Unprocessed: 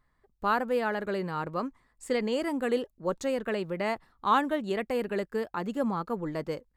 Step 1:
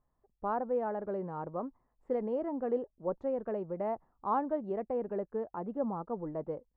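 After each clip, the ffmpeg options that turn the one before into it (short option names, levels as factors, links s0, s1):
-af "lowpass=f=770:t=q:w=1.6,volume=0.473"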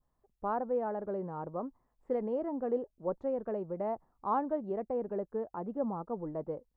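-af "adynamicequalizer=threshold=0.002:dfrequency=2300:dqfactor=0.9:tfrequency=2300:tqfactor=0.9:attack=5:release=100:ratio=0.375:range=2.5:mode=cutabove:tftype=bell"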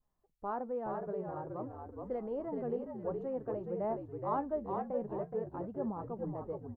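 -filter_complex "[0:a]flanger=delay=4.4:depth=5.9:regen=67:speed=0.51:shape=triangular,asplit=2[s0][s1];[s1]asplit=5[s2][s3][s4][s5][s6];[s2]adelay=421,afreqshift=-61,volume=0.631[s7];[s3]adelay=842,afreqshift=-122,volume=0.234[s8];[s4]adelay=1263,afreqshift=-183,volume=0.0861[s9];[s5]adelay=1684,afreqshift=-244,volume=0.032[s10];[s6]adelay=2105,afreqshift=-305,volume=0.0119[s11];[s7][s8][s9][s10][s11]amix=inputs=5:normalize=0[s12];[s0][s12]amix=inputs=2:normalize=0"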